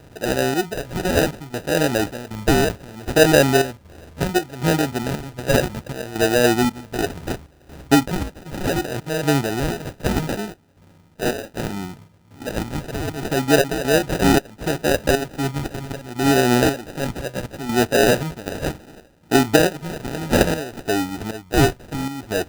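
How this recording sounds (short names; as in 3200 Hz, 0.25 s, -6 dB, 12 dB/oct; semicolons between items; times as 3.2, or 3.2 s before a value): phasing stages 2, 0.68 Hz, lowest notch 260–2700 Hz; aliases and images of a low sample rate 1100 Hz, jitter 0%; chopped level 1.3 Hz, depth 65%, duty 70%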